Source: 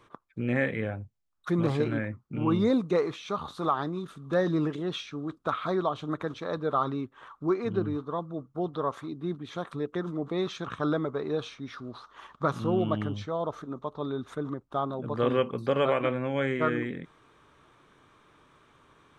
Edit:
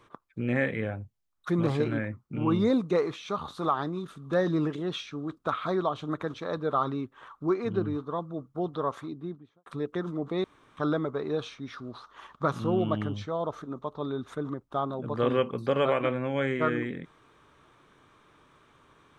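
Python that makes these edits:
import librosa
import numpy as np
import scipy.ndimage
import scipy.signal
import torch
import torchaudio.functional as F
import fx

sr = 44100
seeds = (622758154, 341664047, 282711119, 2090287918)

y = fx.studio_fade_out(x, sr, start_s=8.98, length_s=0.68)
y = fx.edit(y, sr, fx.room_tone_fill(start_s=10.44, length_s=0.33), tone=tone)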